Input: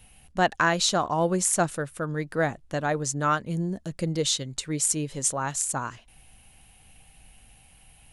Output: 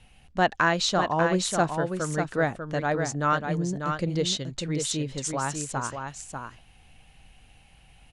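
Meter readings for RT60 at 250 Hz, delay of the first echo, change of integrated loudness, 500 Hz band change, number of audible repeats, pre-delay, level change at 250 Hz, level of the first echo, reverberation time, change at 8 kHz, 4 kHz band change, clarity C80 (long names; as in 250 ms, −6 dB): no reverb audible, 594 ms, −0.5 dB, +1.0 dB, 1, no reverb audible, +1.0 dB, −6.0 dB, no reverb audible, −6.0 dB, 0.0 dB, no reverb audible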